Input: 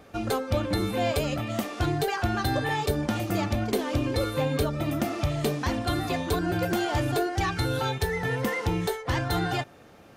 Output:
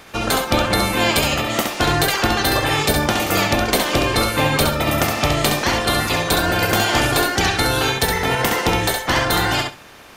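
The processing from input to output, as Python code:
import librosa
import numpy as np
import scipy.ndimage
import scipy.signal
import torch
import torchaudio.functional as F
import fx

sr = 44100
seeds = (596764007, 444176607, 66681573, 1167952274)

y = fx.spec_clip(x, sr, under_db=17)
y = fx.echo_feedback(y, sr, ms=67, feedback_pct=17, wet_db=-5.0)
y = y * 10.0 ** (8.0 / 20.0)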